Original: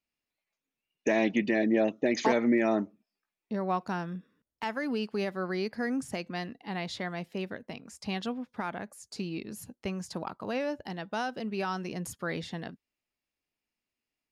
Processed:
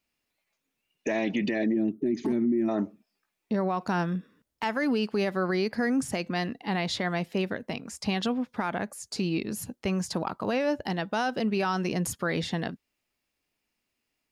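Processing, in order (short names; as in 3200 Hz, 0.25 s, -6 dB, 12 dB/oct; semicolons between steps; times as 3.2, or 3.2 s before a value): spectral gain 1.73–2.69, 430–8300 Hz -21 dB; limiter -27 dBFS, peak gain reduction 11 dB; gain +8 dB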